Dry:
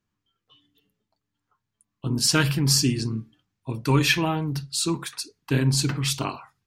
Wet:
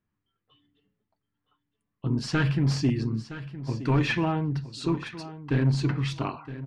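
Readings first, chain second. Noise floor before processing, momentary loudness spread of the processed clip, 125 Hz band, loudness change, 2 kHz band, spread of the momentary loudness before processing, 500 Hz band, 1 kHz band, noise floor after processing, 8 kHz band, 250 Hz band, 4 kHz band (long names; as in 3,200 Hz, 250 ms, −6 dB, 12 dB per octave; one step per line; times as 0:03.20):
−82 dBFS, 11 LU, −1.0 dB, −4.0 dB, −5.0 dB, 14 LU, −2.5 dB, −3.0 dB, −82 dBFS, −19.5 dB, −1.0 dB, −12.0 dB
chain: parametric band 1,900 Hz +4 dB 0.49 octaves
hard clipping −16 dBFS, distortion −14 dB
head-to-tape spacing loss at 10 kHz 27 dB
repeating echo 966 ms, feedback 19%, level −14 dB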